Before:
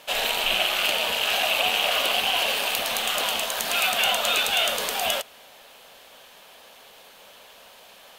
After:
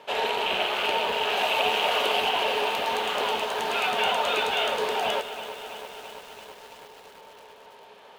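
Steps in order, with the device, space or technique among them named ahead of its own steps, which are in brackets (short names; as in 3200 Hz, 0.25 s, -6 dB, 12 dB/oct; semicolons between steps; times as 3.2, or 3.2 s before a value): HPF 73 Hz; inside a helmet (high shelf 5200 Hz -5.5 dB; small resonant body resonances 420/900 Hz, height 14 dB, ringing for 75 ms); 1.37–2.29 high shelf 5300 Hz +6.5 dB; LPF 2300 Hz 6 dB/oct; lo-fi delay 0.333 s, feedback 80%, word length 7-bit, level -12 dB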